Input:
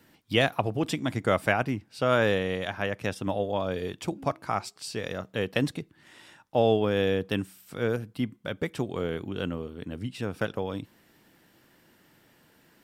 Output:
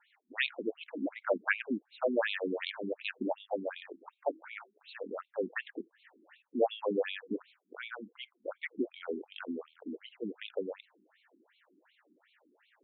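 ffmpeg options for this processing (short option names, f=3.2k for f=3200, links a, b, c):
-filter_complex "[0:a]asettb=1/sr,asplit=3[a][b][c];[a]atrim=end=2.424[d];[b]atrim=start=2.42:end=3.29,asetpts=PTS-STARTPTS,afade=t=in:d=0.004:c=qsin,afade=t=out:st=0.866:d=0.004:c=qsin,aeval=exprs='0.237*(cos(1*acos(clip(val(0)/0.237,-1,1)))-cos(1*PI/2))+0.0266*(cos(8*acos(clip(val(0)/0.237,-1,1)))-cos(8*PI/2))':c=same[e];[c]atrim=start=3.286[f];[d][e]acrossfade=d=0.004:c1=hsin:c2=qsin[g];[g][f]acrossfade=d=0.004:c1=qsin:c2=hsin,afftfilt=real='re*between(b*sr/1024,270*pow(3100/270,0.5+0.5*sin(2*PI*2.7*pts/sr))/1.41,270*pow(3100/270,0.5+0.5*sin(2*PI*2.7*pts/sr))*1.41)':imag='im*between(b*sr/1024,270*pow(3100/270,0.5+0.5*sin(2*PI*2.7*pts/sr))/1.41,270*pow(3100/270,0.5+0.5*sin(2*PI*2.7*pts/sr))*1.41)':win_size=1024:overlap=0.75"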